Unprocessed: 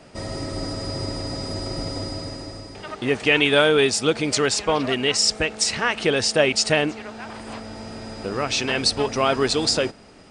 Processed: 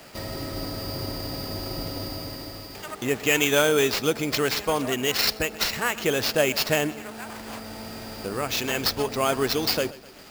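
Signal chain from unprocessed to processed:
bucket-brigade delay 127 ms, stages 4,096, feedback 40%, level −19 dB
sample-rate reduction 9,600 Hz, jitter 0%
one half of a high-frequency compander encoder only
level −3.5 dB

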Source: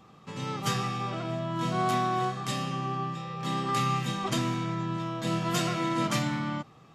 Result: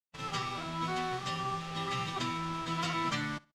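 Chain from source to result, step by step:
soft clipping −18.5 dBFS, distortion −23 dB
tilt shelving filter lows −5.5 dB, about 660 Hz
hum removal 144.4 Hz, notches 27
bit-depth reduction 6 bits, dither none
low-pass filter 4,900 Hz 12 dB per octave
low-shelf EQ 93 Hz +11.5 dB
double-tracking delay 13 ms −5 dB
phase-vocoder stretch with locked phases 0.51×
repeating echo 66 ms, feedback 28%, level −24 dB
level −5 dB

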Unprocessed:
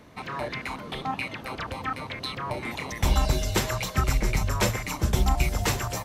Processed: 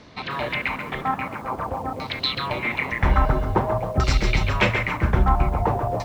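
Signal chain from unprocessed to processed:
auto-filter low-pass saw down 0.5 Hz 610–5,100 Hz
feedback echo at a low word length 136 ms, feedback 35%, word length 8 bits, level −9.5 dB
level +3.5 dB

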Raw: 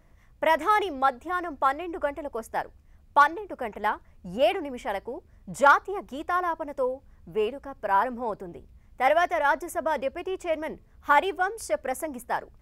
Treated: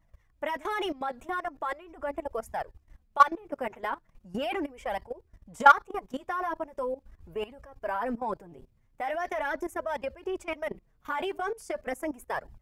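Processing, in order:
flanger 0.4 Hz, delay 0.9 ms, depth 7.4 ms, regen 0%
output level in coarse steps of 18 dB
level +5.5 dB

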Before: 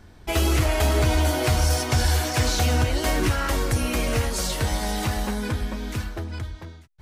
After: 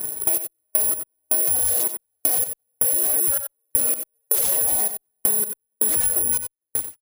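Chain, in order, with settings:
stylus tracing distortion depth 0.41 ms
parametric band 470 Hz +15 dB 1.4 octaves
bad sample-rate conversion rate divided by 4×, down none, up zero stuff
gate pattern "xx..x..x" 80 BPM −60 dB
reverb reduction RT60 0.79 s
in parallel at −7 dB: fuzz pedal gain 31 dB, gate −28 dBFS
on the sum: speech leveller 2 s
brickwall limiter −8.5 dBFS, peak gain reduction 16 dB
spectral tilt +2 dB per octave
on a send: single-tap delay 91 ms −11.5 dB
on the sum: downward compressor 6 to 1, threshold −18 dBFS, peak gain reduction 9 dB
level +2 dB

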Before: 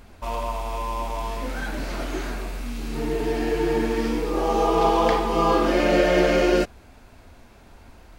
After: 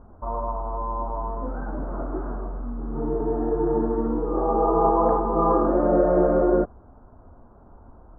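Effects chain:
Butterworth low-pass 1,300 Hz 48 dB per octave

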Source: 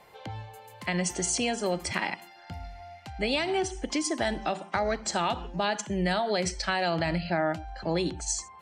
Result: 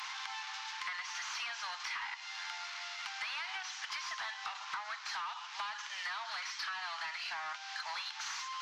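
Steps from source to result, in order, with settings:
linear delta modulator 32 kbit/s, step −42 dBFS
Butterworth high-pass 950 Hz 48 dB per octave
downward compressor 10 to 1, threshold −46 dBFS, peak gain reduction 15 dB
soft clipping −38.5 dBFS, distortion −24 dB
level +9.5 dB

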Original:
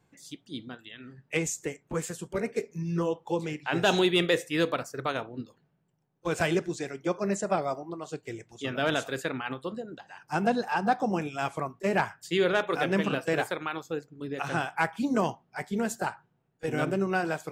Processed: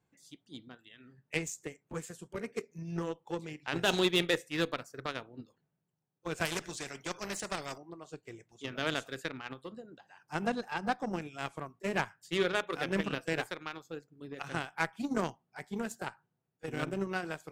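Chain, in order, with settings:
dynamic equaliser 730 Hz, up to −4 dB, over −38 dBFS, Q 1.2
harmonic generator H 3 −16 dB, 7 −30 dB, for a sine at −13 dBFS
0:06.45–0:07.78: every bin compressed towards the loudest bin 2 to 1

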